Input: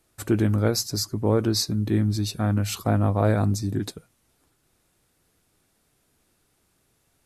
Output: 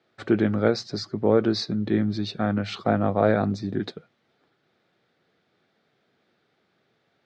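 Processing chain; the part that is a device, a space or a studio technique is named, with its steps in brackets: high-pass 81 Hz; kitchen radio (cabinet simulation 190–3800 Hz, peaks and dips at 290 Hz -6 dB, 1 kHz -7 dB, 2.7 kHz -6 dB); trim +4.5 dB

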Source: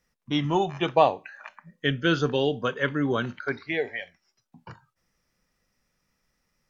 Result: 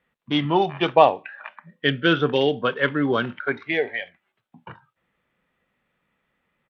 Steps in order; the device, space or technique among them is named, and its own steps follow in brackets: Bluetooth headset (high-pass 180 Hz 6 dB/octave; resampled via 8 kHz; trim +5 dB; SBC 64 kbps 32 kHz)

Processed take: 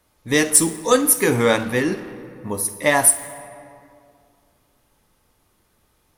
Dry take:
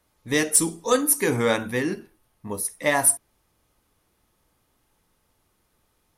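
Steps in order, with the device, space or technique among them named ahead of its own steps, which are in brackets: saturated reverb return (on a send at -7.5 dB: reverberation RT60 2.1 s, pre-delay 34 ms + saturation -28 dBFS, distortion -7 dB); on the sum: trim +4.5 dB

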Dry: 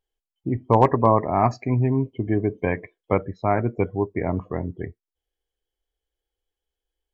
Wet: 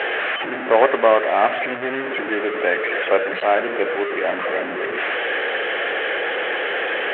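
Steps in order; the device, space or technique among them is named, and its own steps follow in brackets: digital answering machine (band-pass 310–3300 Hz; one-bit delta coder 16 kbps, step -21.5 dBFS; cabinet simulation 420–3200 Hz, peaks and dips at 560 Hz +5 dB, 970 Hz -8 dB, 1.7 kHz +7 dB); trim +5 dB

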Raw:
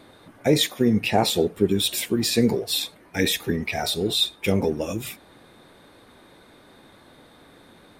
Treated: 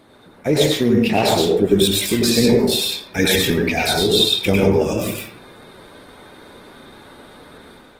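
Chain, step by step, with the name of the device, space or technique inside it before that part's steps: speakerphone in a meeting room (reverberation RT60 0.55 s, pre-delay 93 ms, DRR -1.5 dB; level rider gain up to 5.5 dB; Opus 16 kbps 48 kHz)

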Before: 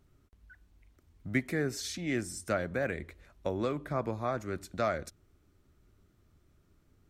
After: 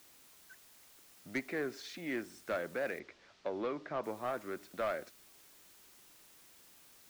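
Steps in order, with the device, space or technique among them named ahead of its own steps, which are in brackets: tape answering machine (band-pass 310–3100 Hz; saturation -26.5 dBFS, distortion -15 dB; wow and flutter; white noise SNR 19 dB); 2.99–4.04 s: low-pass 5.3 kHz 24 dB/octave; trim -1.5 dB

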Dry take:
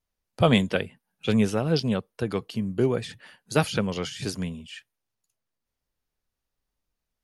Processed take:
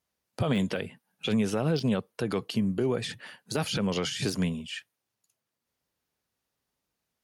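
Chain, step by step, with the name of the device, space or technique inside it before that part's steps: podcast mastering chain (high-pass 110 Hz 12 dB/octave; de-esser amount 70%; compression 2.5:1, threshold -25 dBFS, peak gain reduction 8 dB; peak limiter -22 dBFS, peak gain reduction 10.5 dB; trim +4.5 dB; MP3 128 kbps 44.1 kHz)

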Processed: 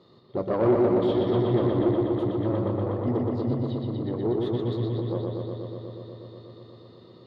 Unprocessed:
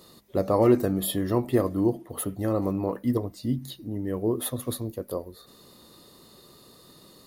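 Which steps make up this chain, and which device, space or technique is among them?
analogue delay pedal into a guitar amplifier (bucket-brigade echo 121 ms, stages 4096, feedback 83%, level -3 dB; valve stage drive 18 dB, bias 0.65; cabinet simulation 84–3700 Hz, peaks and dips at 120 Hz +8 dB, 380 Hz +5 dB, 1.6 kHz -6 dB, 2.6 kHz -8 dB)

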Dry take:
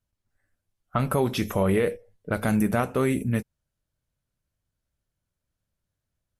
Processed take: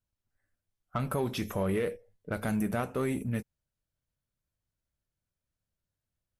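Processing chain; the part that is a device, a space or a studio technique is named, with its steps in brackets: parallel distortion (in parallel at -7.5 dB: hard clipper -25 dBFS, distortion -7 dB); on the sum: trim -9 dB

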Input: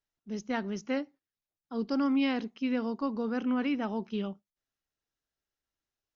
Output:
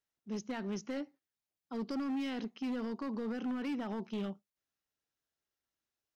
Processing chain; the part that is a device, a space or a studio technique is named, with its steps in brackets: high-pass 88 Hz 6 dB/octave; limiter into clipper (peak limiter -26.5 dBFS, peak gain reduction 7.5 dB; hard clipper -31.5 dBFS, distortion -14 dB); trim -1 dB

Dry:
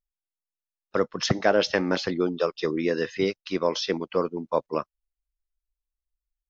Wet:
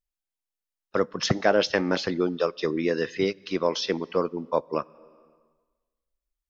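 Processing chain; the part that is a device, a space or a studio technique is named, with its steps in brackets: compressed reverb return (on a send at -12 dB: reverberation RT60 1.3 s, pre-delay 16 ms + compression 8:1, threshold -35 dBFS, peak gain reduction 18.5 dB)

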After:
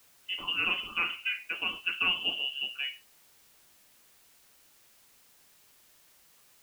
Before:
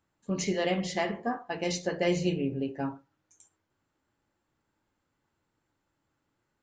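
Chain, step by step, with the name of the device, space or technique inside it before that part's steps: scrambled radio voice (band-pass 300–3000 Hz; frequency inversion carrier 3.2 kHz; white noise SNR 25 dB)

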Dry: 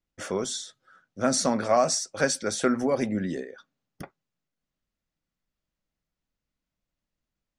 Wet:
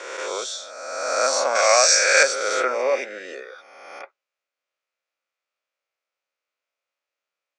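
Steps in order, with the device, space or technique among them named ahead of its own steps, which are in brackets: reverse spectral sustain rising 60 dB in 1.58 s; 1.55–2.23 s: high-order bell 3.8 kHz +9 dB 2.9 oct; phone speaker on a table (cabinet simulation 470–7300 Hz, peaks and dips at 540 Hz +5 dB, 1.3 kHz +6 dB, 2.4 kHz +9 dB); trim -1 dB

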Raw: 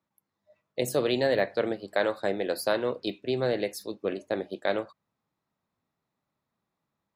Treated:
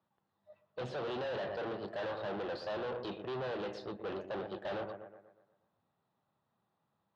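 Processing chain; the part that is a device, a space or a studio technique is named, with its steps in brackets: analogue delay pedal into a guitar amplifier (bucket-brigade echo 121 ms, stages 2048, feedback 48%, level -17.5 dB; valve stage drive 40 dB, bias 0.5; cabinet simulation 87–3900 Hz, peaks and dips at 100 Hz +3 dB, 280 Hz -5 dB, 800 Hz +4 dB, 2.2 kHz -9 dB); trim +4 dB

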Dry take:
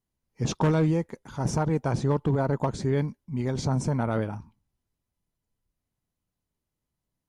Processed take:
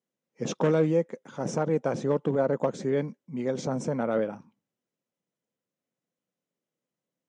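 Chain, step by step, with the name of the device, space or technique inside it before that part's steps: television speaker (cabinet simulation 170–7600 Hz, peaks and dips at 520 Hz +9 dB, 930 Hz -5 dB, 4.5 kHz -8 dB); trim -1 dB

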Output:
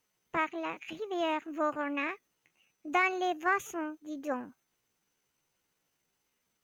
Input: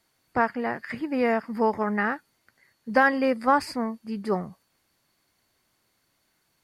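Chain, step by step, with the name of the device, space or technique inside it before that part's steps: chipmunk voice (pitch shift +5.5 st); trim -8 dB

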